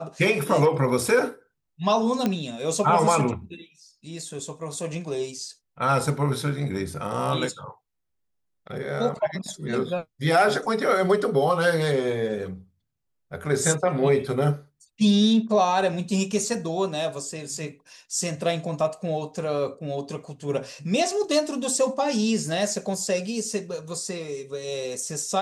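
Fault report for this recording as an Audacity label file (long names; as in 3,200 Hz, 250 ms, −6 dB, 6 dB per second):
2.260000	2.260000	click −11 dBFS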